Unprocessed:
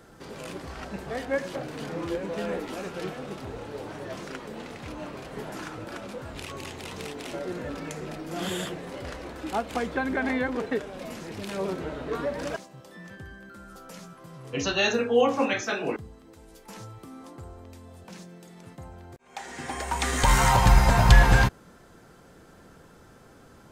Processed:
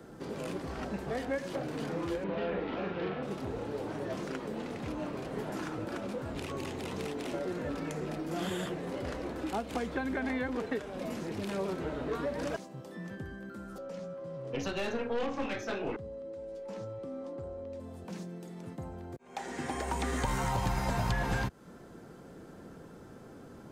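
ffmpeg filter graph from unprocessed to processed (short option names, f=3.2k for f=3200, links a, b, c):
-filter_complex "[0:a]asettb=1/sr,asplit=3[a][b][c];[a]atrim=end=2.244[d];[b]atrim=start=2.24:end=3.23,asetpts=PTS-STARTPTS,afade=t=in:d=0.004:c=qsin,afade=t=out:st=0.986:d=0.004:c=qsin,lowpass=f=3.6k:w=0.5412,lowpass=f=3.6k:w=1.3066,asplit=2[e][f];[f]adelay=41,volume=-2.5dB[g];[e][g]amix=inputs=2:normalize=0,atrim=end_sample=43659[h];[c]atrim=start=3.226[i];[d][h]acrossfade=d=0.004:c1=hsin:c2=qsin[j];[j][i]acrossfade=d=0.004:c1=qsin:c2=hsin,asettb=1/sr,asplit=3[k][l][m];[k]atrim=end=13.784[n];[l]atrim=start=13.78:end=17.8,asetpts=PTS-STARTPTS,afade=t=in:d=0.004:c=qsin,afade=t=out:st=4.016:d=0.004:c=qsin,lowpass=6k,aeval=exprs='(tanh(14.1*val(0)+0.7)-tanh(0.7))/14.1':c=same,aeval=exprs='val(0)+0.00794*sin(2*PI*550*n/s)':c=same[o];[m]atrim=start=17.796[p];[n][o]acrossfade=d=0.004:c1=hsin:c2=qsin[q];[q][p]acrossfade=d=0.004:c1=qsin:c2=hsin,equalizer=f=270:t=o:w=3:g=9.5,acrossover=split=100|730|2300[r][s][t][u];[r]acompressor=threshold=-32dB:ratio=4[v];[s]acompressor=threshold=-31dB:ratio=4[w];[t]acompressor=threshold=-34dB:ratio=4[x];[u]acompressor=threshold=-40dB:ratio=4[y];[v][w][x][y]amix=inputs=4:normalize=0,volume=-4.5dB"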